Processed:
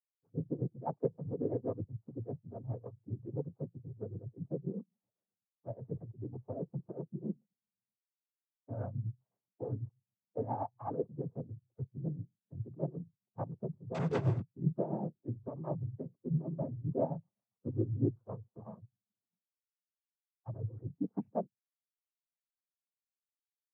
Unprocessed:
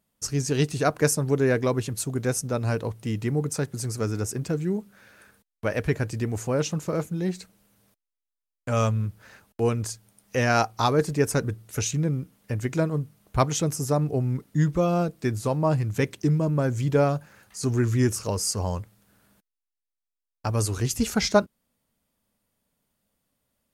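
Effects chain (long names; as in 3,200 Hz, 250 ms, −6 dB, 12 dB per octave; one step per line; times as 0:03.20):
spectral dynamics exaggerated over time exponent 1.5
elliptic low-pass filter 840 Hz, stop band 80 dB
0:13.94–0:14.53: leveller curve on the samples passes 5
cochlear-implant simulation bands 16
amplitude tremolo 7.7 Hz, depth 65%
level −6.5 dB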